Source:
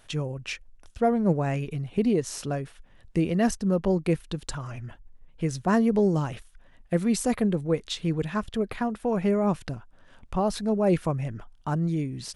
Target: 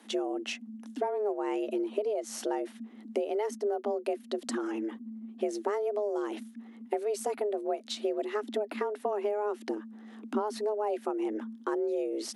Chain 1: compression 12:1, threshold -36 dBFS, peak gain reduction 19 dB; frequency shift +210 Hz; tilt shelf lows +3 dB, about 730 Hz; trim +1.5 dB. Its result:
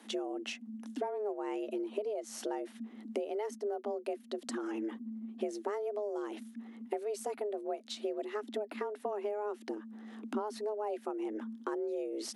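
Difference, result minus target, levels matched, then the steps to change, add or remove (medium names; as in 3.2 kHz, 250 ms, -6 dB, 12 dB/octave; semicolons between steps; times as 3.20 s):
compression: peak gain reduction +5.5 dB
change: compression 12:1, threshold -30 dBFS, peak gain reduction 13.5 dB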